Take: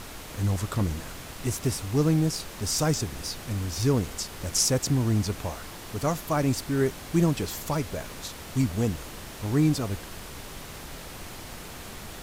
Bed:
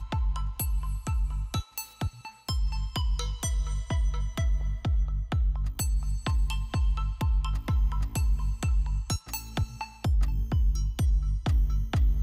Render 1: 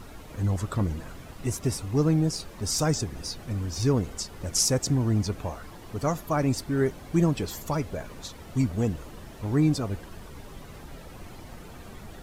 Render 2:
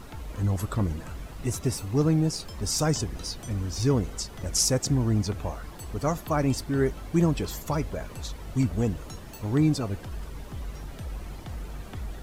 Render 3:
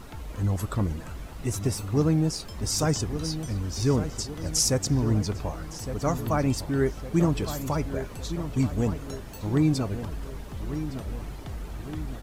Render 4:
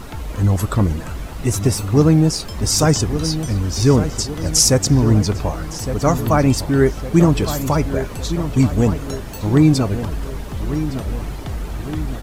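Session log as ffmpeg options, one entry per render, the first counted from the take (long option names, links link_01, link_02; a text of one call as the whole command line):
ffmpeg -i in.wav -af "afftdn=noise_reduction=11:noise_floor=-41" out.wav
ffmpeg -i in.wav -i bed.wav -filter_complex "[1:a]volume=-12.5dB[link_01];[0:a][link_01]amix=inputs=2:normalize=0" out.wav
ffmpeg -i in.wav -filter_complex "[0:a]asplit=2[link_01][link_02];[link_02]adelay=1161,lowpass=frequency=2400:poles=1,volume=-10dB,asplit=2[link_03][link_04];[link_04]adelay=1161,lowpass=frequency=2400:poles=1,volume=0.52,asplit=2[link_05][link_06];[link_06]adelay=1161,lowpass=frequency=2400:poles=1,volume=0.52,asplit=2[link_07][link_08];[link_08]adelay=1161,lowpass=frequency=2400:poles=1,volume=0.52,asplit=2[link_09][link_10];[link_10]adelay=1161,lowpass=frequency=2400:poles=1,volume=0.52,asplit=2[link_11][link_12];[link_12]adelay=1161,lowpass=frequency=2400:poles=1,volume=0.52[link_13];[link_01][link_03][link_05][link_07][link_09][link_11][link_13]amix=inputs=7:normalize=0" out.wav
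ffmpeg -i in.wav -af "volume=10dB,alimiter=limit=-2dB:level=0:latency=1" out.wav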